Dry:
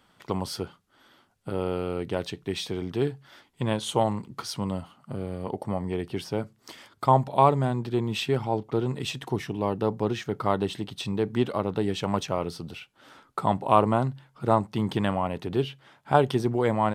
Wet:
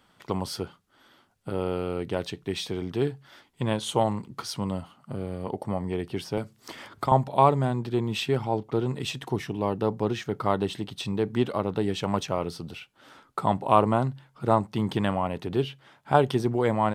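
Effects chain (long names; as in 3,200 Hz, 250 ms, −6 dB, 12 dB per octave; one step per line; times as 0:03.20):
0:06.37–0:07.12: multiband upward and downward compressor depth 70%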